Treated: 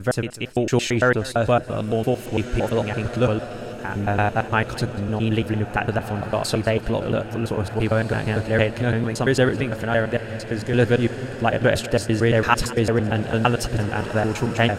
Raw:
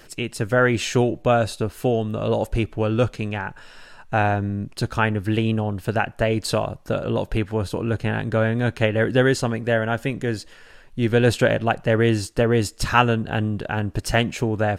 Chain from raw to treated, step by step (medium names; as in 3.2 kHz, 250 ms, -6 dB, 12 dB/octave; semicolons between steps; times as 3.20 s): slices played last to first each 113 ms, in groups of 5; echo that smears into a reverb 1787 ms, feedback 51%, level -12 dB; modulated delay 191 ms, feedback 47%, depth 92 cents, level -19 dB